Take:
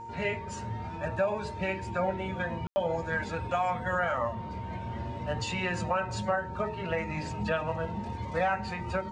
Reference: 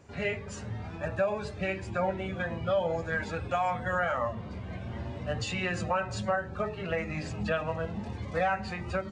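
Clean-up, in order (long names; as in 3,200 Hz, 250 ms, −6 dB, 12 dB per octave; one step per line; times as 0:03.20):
hum removal 115.8 Hz, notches 4
notch filter 920 Hz, Q 30
ambience match 0:02.67–0:02.76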